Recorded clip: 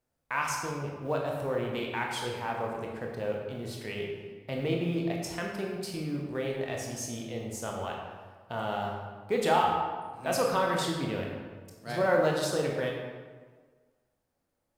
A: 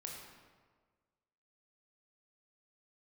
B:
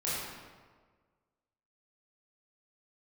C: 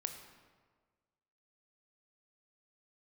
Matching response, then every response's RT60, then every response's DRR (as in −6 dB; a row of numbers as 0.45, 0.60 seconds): A; 1.5, 1.5, 1.5 seconds; −1.0, −9.0, 6.0 decibels